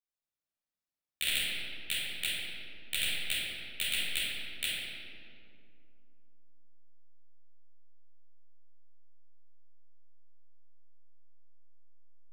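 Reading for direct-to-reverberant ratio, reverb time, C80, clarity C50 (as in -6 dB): -13.0 dB, 2.6 s, -1.5 dB, -4.0 dB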